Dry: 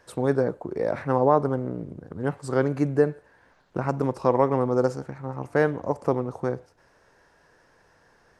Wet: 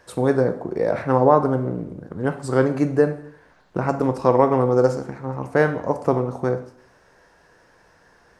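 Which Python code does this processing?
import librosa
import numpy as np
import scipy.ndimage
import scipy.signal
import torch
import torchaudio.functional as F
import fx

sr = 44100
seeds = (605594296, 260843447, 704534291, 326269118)

y = fx.rev_plate(x, sr, seeds[0], rt60_s=0.63, hf_ratio=0.9, predelay_ms=0, drr_db=8.0)
y = y * 10.0 ** (4.0 / 20.0)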